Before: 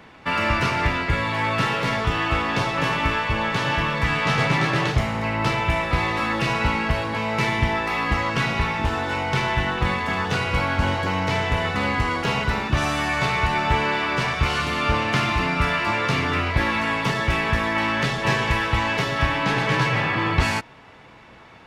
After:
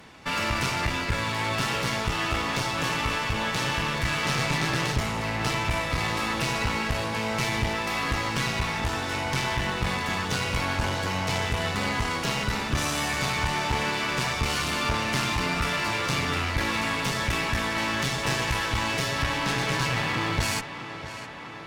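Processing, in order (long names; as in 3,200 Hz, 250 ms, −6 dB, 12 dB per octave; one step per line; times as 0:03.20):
bass and treble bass +2 dB, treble +12 dB
in parallel at −1.5 dB: brickwall limiter −12 dBFS, peak gain reduction 7.5 dB
on the sum: asymmetric clip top −22 dBFS
tape delay 656 ms, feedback 79%, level −11 dB, low-pass 4,500 Hz
level −8.5 dB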